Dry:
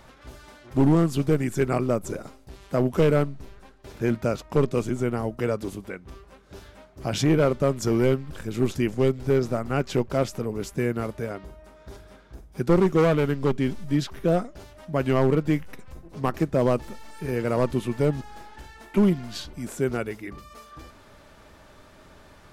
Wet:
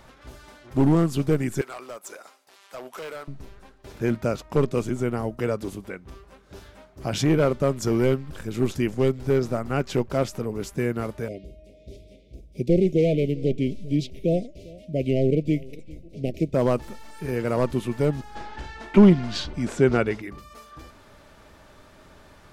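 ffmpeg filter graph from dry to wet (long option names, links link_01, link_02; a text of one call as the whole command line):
ffmpeg -i in.wav -filter_complex "[0:a]asettb=1/sr,asplit=3[link_01][link_02][link_03];[link_01]atrim=end=1.614[link_04];[link_02]atrim=start=1.61:end=3.28,asetpts=PTS-STARTPTS,afade=type=in:duration=0.004:curve=qsin,afade=type=out:start_time=1.666:duration=0.004:curve=qsin,highpass=840,acompressor=threshold=-32dB:ratio=2:attack=3.2:release=140:knee=1:detection=peak,volume=31.5dB,asoftclip=hard,volume=-31.5dB[link_05];[link_03]atrim=start=3.276[link_06];[link_04][link_05]acrossfade=duration=0.004:curve1=hsin:curve2=qsin[link_07];[link_07][link_06]acrossfade=duration=0.004:curve1=qsin:curve2=hsin,asettb=1/sr,asplit=3[link_08][link_09][link_10];[link_08]atrim=end=11.284[link_11];[link_09]atrim=start=11.28:end=16.54,asetpts=PTS-STARTPTS,afade=type=in:duration=0.004:curve=qsin,afade=type=out:start_time=5.256:duration=0.004:curve=qsin,asuperstop=centerf=1200:order=12:qfactor=0.77,highshelf=frequency=7200:gain=-11,aecho=1:1:399:0.0794,atrim=end_sample=231966[link_12];[link_10]atrim=start=16.536[link_13];[link_11][link_12]acrossfade=duration=0.004:curve1=hsin:curve2=qsin[link_14];[link_14][link_13]acrossfade=duration=0.004:curve1=qsin:curve2=hsin,asettb=1/sr,asplit=3[link_15][link_16][link_17];[link_15]atrim=end=18.354[link_18];[link_16]atrim=start=18.35:end=20.22,asetpts=PTS-STARTPTS,afade=type=in:duration=0.004:curve=qsin,afade=type=out:start_time=1.866:duration=0.004:curve=qsin,lowpass=5300,acontrast=78[link_19];[link_17]atrim=start=20.216[link_20];[link_18][link_19]acrossfade=duration=0.004:curve1=hsin:curve2=qsin[link_21];[link_21][link_20]acrossfade=duration=0.004:curve1=qsin:curve2=hsin" out.wav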